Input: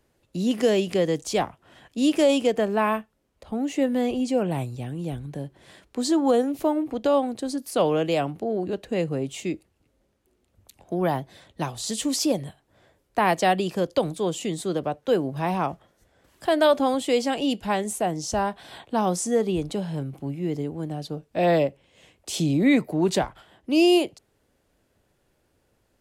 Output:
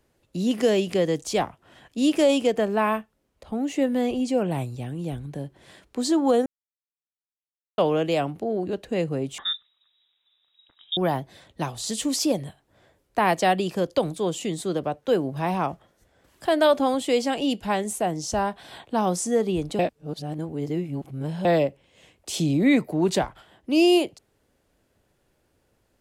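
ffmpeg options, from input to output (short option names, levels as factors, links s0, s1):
-filter_complex "[0:a]asettb=1/sr,asplit=3[s0][s1][s2];[s0]atrim=end=9.384[s3];[s1]atrim=start=9.38:end=10.97,asetpts=PTS-STARTPTS,afade=t=in:d=0.004:c=qsin,afade=t=out:st=1.586:d=0.004:c=qsin,lowpass=f=3300:t=q:w=0.5098,lowpass=f=3300:t=q:w=0.6013,lowpass=f=3300:t=q:w=0.9,lowpass=f=3300:t=q:w=2.563,afreqshift=-3900[s4];[s2]atrim=start=10.966[s5];[s3][s4]acrossfade=d=0.004:c1=hsin:c2=qsin[s6];[s6][s5]acrossfade=d=0.004:c1=qsin:c2=hsin,asplit=5[s7][s8][s9][s10][s11];[s7]atrim=end=6.46,asetpts=PTS-STARTPTS,afade=t=out:st=6.456:d=0.004:c=hsin[s12];[s8]atrim=start=6.46:end=7.78,asetpts=PTS-STARTPTS,volume=0[s13];[s9]atrim=start=7.78:end=19.792,asetpts=PTS-STARTPTS,afade=t=in:d=0.004:c=hsin[s14];[s10]atrim=start=19.788:end=21.452,asetpts=PTS-STARTPTS,areverse[s15];[s11]atrim=start=21.448[s16];[s12][s13][s14]concat=n=3:v=0:a=1[s17];[s17][s15]acrossfade=d=0.004:c1=hsin:c2=hsin[s18];[s18][s16]acrossfade=d=0.004:c1=hsin:c2=hsin"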